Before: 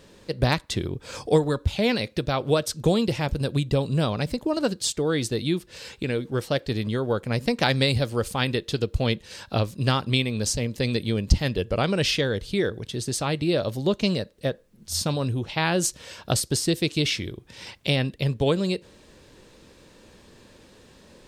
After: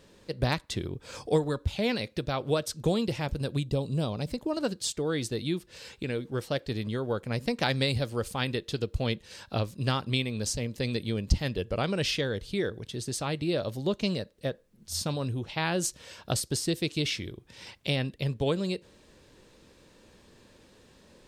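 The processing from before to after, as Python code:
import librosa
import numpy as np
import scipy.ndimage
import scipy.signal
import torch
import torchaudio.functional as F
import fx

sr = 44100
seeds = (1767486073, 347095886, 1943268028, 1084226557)

y = fx.peak_eq(x, sr, hz=1700.0, db=-9.0, octaves=1.3, at=(3.64, 4.28))
y = F.gain(torch.from_numpy(y), -5.5).numpy()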